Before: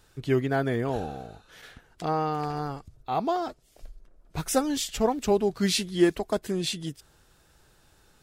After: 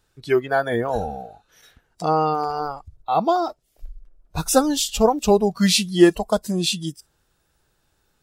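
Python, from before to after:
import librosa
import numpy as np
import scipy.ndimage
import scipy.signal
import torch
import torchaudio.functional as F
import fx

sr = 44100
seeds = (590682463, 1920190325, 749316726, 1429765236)

y = fx.noise_reduce_blind(x, sr, reduce_db=15)
y = F.gain(torch.from_numpy(y), 8.0).numpy()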